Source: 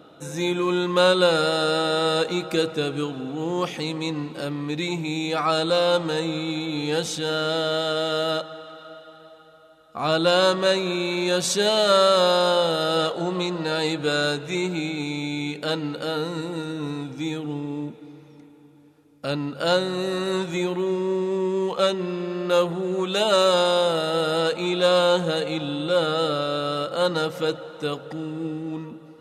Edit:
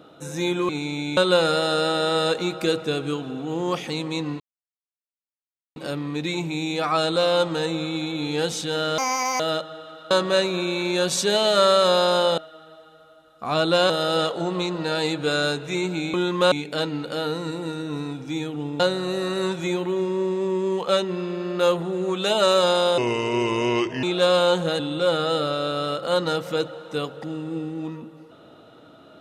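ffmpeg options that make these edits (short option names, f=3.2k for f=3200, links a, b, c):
-filter_complex "[0:a]asplit=15[a][b][c][d][e][f][g][h][i][j][k][l][m][n][o];[a]atrim=end=0.692[p];[b]atrim=start=14.938:end=15.422[q];[c]atrim=start=1.068:end=4.3,asetpts=PTS-STARTPTS,afade=t=out:st=3.228:d=0.004:c=hsin,apad=pad_dur=1.36[r];[d]atrim=start=4.3:end=7.524,asetpts=PTS-STARTPTS,afade=t=in:d=0.004:c=hsin[s];[e]atrim=start=7.52:end=8.2,asetpts=PTS-STARTPTS,asetrate=71883,aresample=44100[t];[f]atrim=start=8.196:end=8.912[u];[g]atrim=start=10.428:end=12.702[v];[h]atrim=start=8.908:end=10.432[w];[i]atrim=start=12.698:end=14.942[x];[j]atrim=start=0.688:end=1.072[y];[k]atrim=start=15.418:end=17.702[z];[l]atrim=start=19.698:end=23.884[aa];[m]atrim=start=23.88:end=24.65,asetpts=PTS-STARTPTS,asetrate=32193,aresample=44100,atrim=end_sample=46516,asetpts=PTS-STARTPTS[ab];[n]atrim=start=24.646:end=25.412[ac];[o]atrim=start=25.678[ad];[p][q]acrossfade=d=0.004:c1=hsin:c2=hsin[ae];[r][s]concat=n=2:v=0:a=1[af];[ae][af]acrossfade=d=0.004:c1=hsin:c2=hsin[ag];[ag][t]acrossfade=d=0.004:c1=hsin:c2=hsin[ah];[ah][u]acrossfade=d=0.004:c1=hsin:c2=hsin[ai];[ai][v]acrossfade=d=0.004:c1=hsin:c2=hsin[aj];[aj][w]acrossfade=d=0.004:c1=hsin:c2=hsin[ak];[ak][x]acrossfade=d=0.004:c1=hsin:c2=hsin[al];[al][y]acrossfade=d=0.004:c1=hsin:c2=hsin[am];[am][z]acrossfade=d=0.004:c1=hsin:c2=hsin[an];[an][aa]acrossfade=d=0.004:c1=hsin:c2=hsin[ao];[ao][ab]acrossfade=d=0.004:c1=hsin:c2=hsin[ap];[ap][ac]acrossfade=d=0.004:c1=hsin:c2=hsin[aq];[aq][ad]acrossfade=d=0.004:c1=hsin:c2=hsin"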